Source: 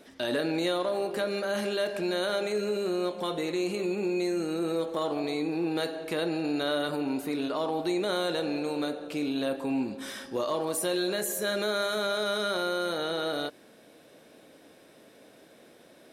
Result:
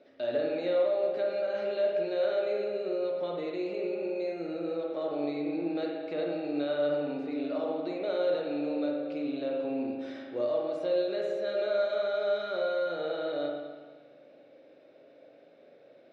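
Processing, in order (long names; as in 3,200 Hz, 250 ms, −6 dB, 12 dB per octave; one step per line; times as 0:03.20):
loudspeaker in its box 130–4,100 Hz, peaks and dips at 210 Hz −8 dB, 570 Hz +10 dB, 1,000 Hz −9 dB, 1,700 Hz −5 dB, 3,200 Hz −7 dB
spring reverb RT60 1.4 s, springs 41/58 ms, chirp 70 ms, DRR 0 dB
level −7.5 dB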